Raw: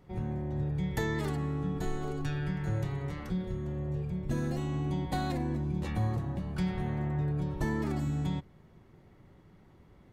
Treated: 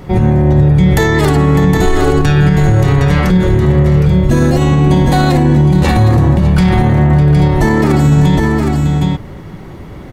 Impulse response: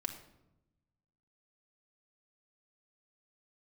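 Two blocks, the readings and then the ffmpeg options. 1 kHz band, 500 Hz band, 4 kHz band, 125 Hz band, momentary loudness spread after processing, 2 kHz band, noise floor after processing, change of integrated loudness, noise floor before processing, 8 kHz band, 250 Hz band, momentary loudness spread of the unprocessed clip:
+23.0 dB, +24.0 dB, +23.0 dB, +23.5 dB, 3 LU, +23.0 dB, -30 dBFS, +23.0 dB, -59 dBFS, +23.5 dB, +23.0 dB, 4 LU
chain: -filter_complex "[0:a]asplit=2[s0][s1];[s1]aecho=0:1:56|602|763:0.15|0.188|0.398[s2];[s0][s2]amix=inputs=2:normalize=0,alimiter=level_in=25.1:limit=0.891:release=50:level=0:latency=1,volume=0.891"

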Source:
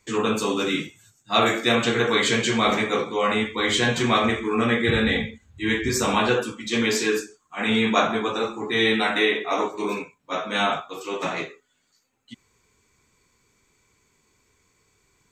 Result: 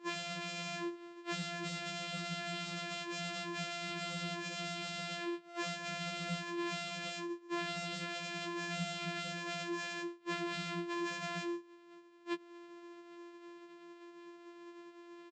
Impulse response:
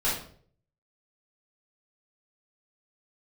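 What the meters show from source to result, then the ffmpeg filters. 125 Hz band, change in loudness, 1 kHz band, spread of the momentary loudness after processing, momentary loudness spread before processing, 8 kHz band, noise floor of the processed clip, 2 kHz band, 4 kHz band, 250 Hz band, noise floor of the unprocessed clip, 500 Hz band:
-14.0 dB, -17.0 dB, -17.0 dB, 15 LU, 9 LU, -14.0 dB, -57 dBFS, -16.0 dB, -15.0 dB, -17.0 dB, -68 dBFS, -20.0 dB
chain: -filter_complex "[0:a]aresample=16000,acrusher=samples=22:mix=1:aa=0.000001,aresample=44100,equalizer=f=110:t=o:w=1.6:g=-12.5,afftfilt=real='hypot(re,im)*cos(PI*b)':imag='0':win_size=512:overlap=0.75,afftfilt=real='re*lt(hypot(re,im),0.0631)':imag='im*lt(hypot(re,im),0.0631)':win_size=1024:overlap=0.75,acrossover=split=270[s0][s1];[s1]acompressor=threshold=0.00158:ratio=5[s2];[s0][s2]amix=inputs=2:normalize=0,acrossover=split=180[s3][s4];[s3]acrusher=bits=6:mix=0:aa=0.000001[s5];[s5][s4]amix=inputs=2:normalize=0,bass=f=250:g=12,treble=f=4000:g=-10,afftfilt=real='re*2.83*eq(mod(b,8),0)':imag='im*2.83*eq(mod(b,8),0)':win_size=2048:overlap=0.75,volume=4.47"

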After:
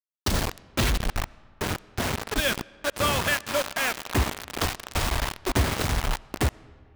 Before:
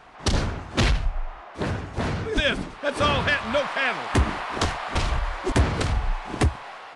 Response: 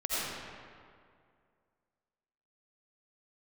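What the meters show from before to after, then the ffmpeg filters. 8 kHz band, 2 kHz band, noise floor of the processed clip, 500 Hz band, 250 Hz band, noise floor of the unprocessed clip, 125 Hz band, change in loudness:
+5.0 dB, -2.0 dB, -55 dBFS, -3.0 dB, -3.0 dB, -42 dBFS, -3.5 dB, -2.0 dB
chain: -filter_complex "[0:a]acrusher=bits=3:mix=0:aa=0.000001,asplit=2[s0][s1];[1:a]atrim=start_sample=2205,lowpass=7900[s2];[s1][s2]afir=irnorm=-1:irlink=0,volume=0.0316[s3];[s0][s3]amix=inputs=2:normalize=0,volume=0.668"

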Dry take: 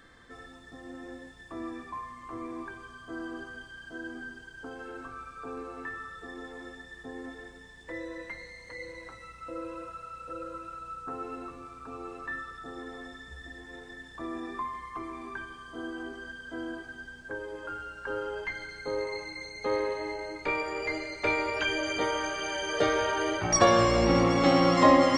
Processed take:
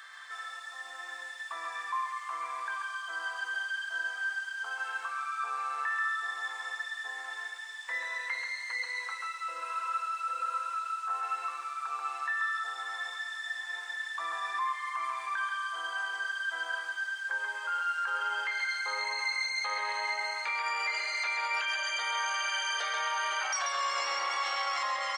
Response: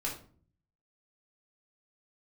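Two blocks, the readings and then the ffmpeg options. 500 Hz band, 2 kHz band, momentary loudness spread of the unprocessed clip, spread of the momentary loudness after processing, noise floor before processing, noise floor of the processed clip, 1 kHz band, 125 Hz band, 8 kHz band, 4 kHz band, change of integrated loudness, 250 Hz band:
-18.5 dB, +4.5 dB, 21 LU, 7 LU, -50 dBFS, -43 dBFS, -0.5 dB, under -40 dB, -3.0 dB, +1.5 dB, -2.5 dB, under -35 dB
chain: -af "highpass=f=960:w=0.5412,highpass=f=960:w=1.3066,acompressor=threshold=0.0178:ratio=6,alimiter=level_in=3.35:limit=0.0631:level=0:latency=1:release=27,volume=0.299,aecho=1:1:135:0.596,volume=2.82"

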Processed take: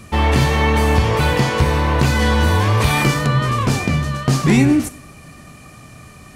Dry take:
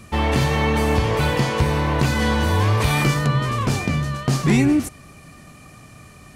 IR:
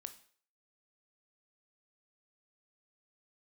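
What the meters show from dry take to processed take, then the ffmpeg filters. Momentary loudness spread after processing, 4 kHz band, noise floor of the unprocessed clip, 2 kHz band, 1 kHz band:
5 LU, +3.5 dB, -45 dBFS, +4.0 dB, +4.0 dB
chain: -filter_complex "[0:a]asplit=2[s0][s1];[1:a]atrim=start_sample=2205[s2];[s1][s2]afir=irnorm=-1:irlink=0,volume=4.22[s3];[s0][s3]amix=inputs=2:normalize=0,volume=0.447"

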